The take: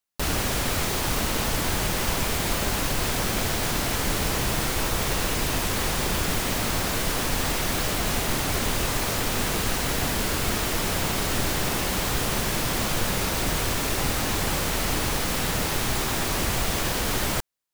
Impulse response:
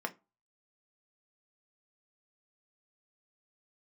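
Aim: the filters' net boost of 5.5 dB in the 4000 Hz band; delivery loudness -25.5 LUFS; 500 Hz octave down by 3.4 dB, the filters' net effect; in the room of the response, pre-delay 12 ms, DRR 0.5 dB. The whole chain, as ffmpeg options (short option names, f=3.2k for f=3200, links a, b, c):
-filter_complex "[0:a]equalizer=f=500:t=o:g=-4.5,equalizer=f=4k:t=o:g=7,asplit=2[a][b];[1:a]atrim=start_sample=2205,adelay=12[c];[b][c]afir=irnorm=-1:irlink=0,volume=-4dB[d];[a][d]amix=inputs=2:normalize=0,volume=-3.5dB"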